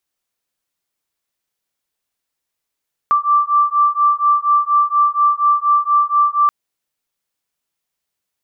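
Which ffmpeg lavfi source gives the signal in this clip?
-f lavfi -i "aevalsrc='0.188*(sin(2*PI*1170*t)+sin(2*PI*1174.2*t))':d=3.38:s=44100"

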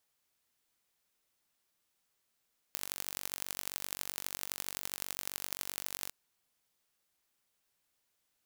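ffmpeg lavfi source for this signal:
-f lavfi -i "aevalsrc='0.398*eq(mod(n,928),0)*(0.5+0.5*eq(mod(n,3712),0))':d=3.36:s=44100"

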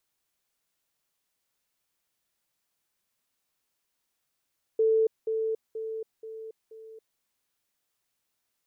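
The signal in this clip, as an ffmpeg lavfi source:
-f lavfi -i "aevalsrc='pow(10,(-19.5-6*floor(t/0.48))/20)*sin(2*PI*443*t)*clip(min(mod(t,0.48),0.28-mod(t,0.48))/0.005,0,1)':d=2.4:s=44100"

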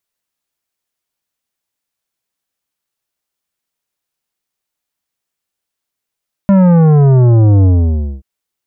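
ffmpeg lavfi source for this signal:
-f lavfi -i "aevalsrc='0.501*clip((1.73-t)/0.58,0,1)*tanh(3.76*sin(2*PI*200*1.73/log(65/200)*(exp(log(65/200)*t/1.73)-1)))/tanh(3.76)':d=1.73:s=44100"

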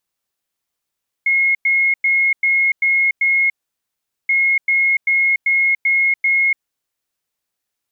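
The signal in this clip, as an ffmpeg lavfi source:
-f lavfi -i "aevalsrc='0.251*sin(2*PI*2160*t)*clip(min(mod(mod(t,3.03),0.39),0.29-mod(mod(t,3.03),0.39))/0.005,0,1)*lt(mod(t,3.03),2.34)':d=6.06:s=44100"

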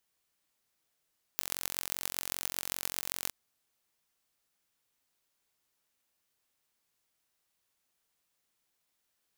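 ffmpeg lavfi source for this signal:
-f lavfi -i "aevalsrc='0.668*eq(mod(n,978),0)*(0.5+0.5*eq(mod(n,5868),0))':d=1.91:s=44100"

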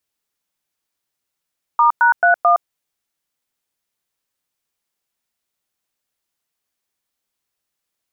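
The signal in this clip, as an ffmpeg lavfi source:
-f lavfi -i "aevalsrc='0.251*clip(min(mod(t,0.219),0.114-mod(t,0.219))/0.002,0,1)*(eq(floor(t/0.219),0)*(sin(2*PI*941*mod(t,0.219))+sin(2*PI*1209*mod(t,0.219)))+eq(floor(t/0.219),1)*(sin(2*PI*941*mod(t,0.219))+sin(2*PI*1477*mod(t,0.219)))+eq(floor(t/0.219),2)*(sin(2*PI*697*mod(t,0.219))+sin(2*PI*1477*mod(t,0.219)))+eq(floor(t/0.219),3)*(sin(2*PI*697*mod(t,0.219))+sin(2*PI*1209*mod(t,0.219))))':d=0.876:s=44100"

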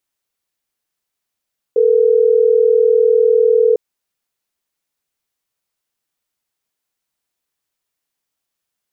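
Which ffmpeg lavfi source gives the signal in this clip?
-f lavfi -i "aevalsrc='0.266*(sin(2*PI*440*t)+sin(2*PI*480*t))*clip(min(mod(t,6),2-mod(t,6))/0.005,0,1)':d=3.12:s=44100"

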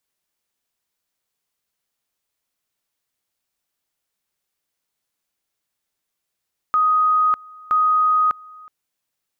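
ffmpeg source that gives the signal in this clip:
-f lavfi -i "aevalsrc='pow(10,(-13.5-25*gte(mod(t,0.97),0.6))/20)*sin(2*PI*1250*t)':d=1.94:s=44100"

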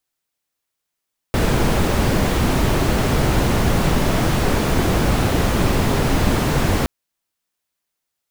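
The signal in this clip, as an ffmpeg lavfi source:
-f lavfi -i "anoisesrc=c=brown:a=0.7:d=5.52:r=44100:seed=1"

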